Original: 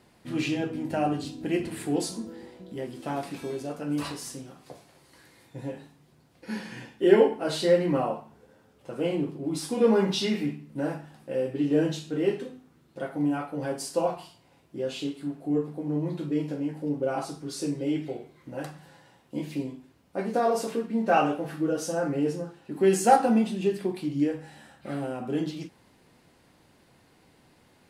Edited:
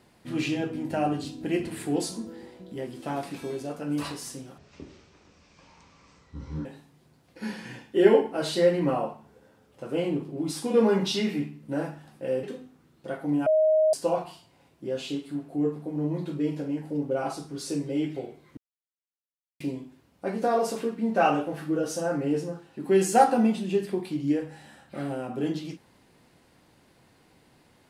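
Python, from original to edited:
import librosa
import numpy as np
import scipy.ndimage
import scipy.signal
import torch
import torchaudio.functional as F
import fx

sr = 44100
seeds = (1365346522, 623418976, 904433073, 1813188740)

y = fx.edit(x, sr, fx.speed_span(start_s=4.58, length_s=1.14, speed=0.55),
    fx.cut(start_s=11.5, length_s=0.85),
    fx.bleep(start_s=13.38, length_s=0.47, hz=626.0, db=-17.5),
    fx.silence(start_s=18.49, length_s=1.03), tone=tone)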